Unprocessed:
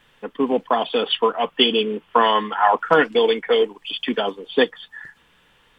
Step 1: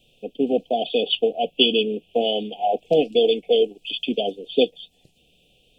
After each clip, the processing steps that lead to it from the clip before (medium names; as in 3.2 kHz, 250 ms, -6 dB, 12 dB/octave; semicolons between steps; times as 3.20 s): Chebyshev band-stop 740–2500 Hz, order 5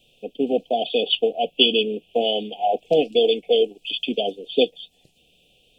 bass shelf 360 Hz -4.5 dB; trim +1.5 dB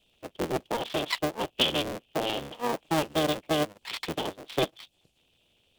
cycle switcher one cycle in 3, inverted; trim -8.5 dB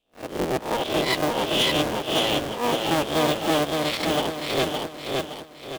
reverse spectral sustain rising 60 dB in 0.38 s; waveshaping leveller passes 3; on a send: feedback delay 566 ms, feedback 40%, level -3 dB; on the sum: trim -6.5 dB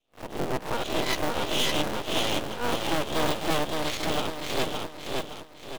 half-wave rectifier